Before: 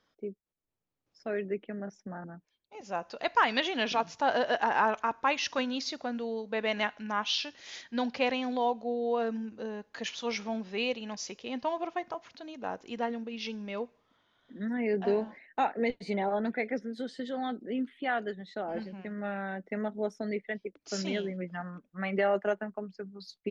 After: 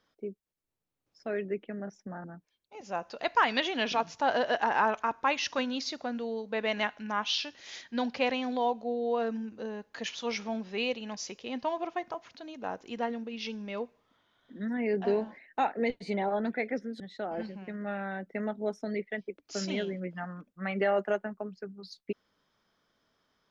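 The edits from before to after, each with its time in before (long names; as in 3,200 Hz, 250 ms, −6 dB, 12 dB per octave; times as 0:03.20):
0:17.00–0:18.37: remove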